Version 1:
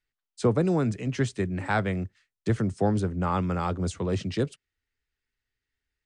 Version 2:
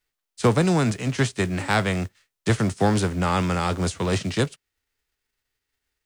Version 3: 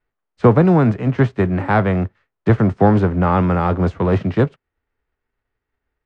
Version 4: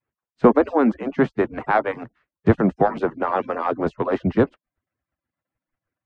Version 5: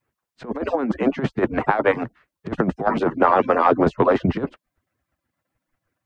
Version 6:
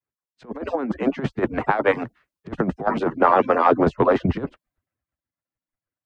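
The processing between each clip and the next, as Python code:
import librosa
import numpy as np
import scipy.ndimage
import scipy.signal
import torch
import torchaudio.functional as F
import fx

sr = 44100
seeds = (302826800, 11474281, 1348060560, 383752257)

y1 = fx.envelope_flatten(x, sr, power=0.6)
y1 = y1 * librosa.db_to_amplitude(4.0)
y2 = scipy.signal.sosfilt(scipy.signal.butter(2, 1300.0, 'lowpass', fs=sr, output='sos'), y1)
y2 = y2 * librosa.db_to_amplitude(7.5)
y3 = fx.hpss_only(y2, sr, part='percussive')
y3 = fx.high_shelf(y3, sr, hz=3400.0, db=-8.5)
y4 = fx.over_compress(y3, sr, threshold_db=-21.0, ratio=-0.5)
y4 = y4 * librosa.db_to_amplitude(4.0)
y5 = fx.band_widen(y4, sr, depth_pct=40)
y5 = y5 * librosa.db_to_amplitude(-1.0)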